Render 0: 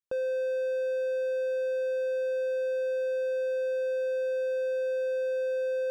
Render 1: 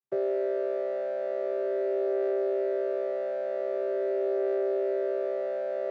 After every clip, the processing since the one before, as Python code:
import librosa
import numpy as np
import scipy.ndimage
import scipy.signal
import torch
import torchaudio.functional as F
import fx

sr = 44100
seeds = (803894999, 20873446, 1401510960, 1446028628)

y = fx.chord_vocoder(x, sr, chord='bare fifth', root=48)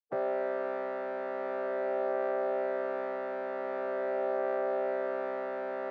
y = fx.spec_clip(x, sr, under_db=28)
y = fx.bandpass_q(y, sr, hz=510.0, q=1.4)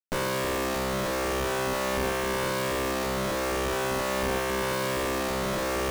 y = fx.quant_companded(x, sr, bits=2)
y = fx.running_max(y, sr, window=33)
y = y * 10.0 ** (2.5 / 20.0)